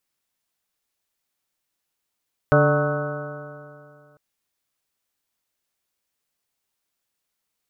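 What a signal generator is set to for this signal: stretched partials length 1.65 s, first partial 144 Hz, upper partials -6/-4/1/-10.5/-16/-10/-6/-5.5 dB, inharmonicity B 0.0039, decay 2.39 s, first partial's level -16.5 dB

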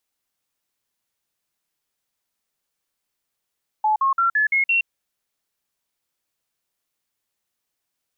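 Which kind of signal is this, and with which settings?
stepped sine 859 Hz up, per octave 3, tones 6, 0.12 s, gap 0.05 s -15.5 dBFS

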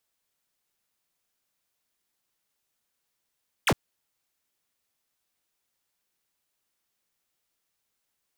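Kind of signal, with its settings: laser zap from 3800 Hz, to 81 Hz, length 0.06 s square, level -21 dB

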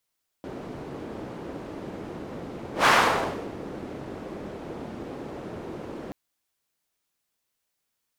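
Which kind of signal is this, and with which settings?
whoosh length 5.68 s, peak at 2.42, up 0.13 s, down 0.71 s, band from 340 Hz, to 1300 Hz, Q 1.1, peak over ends 19.5 dB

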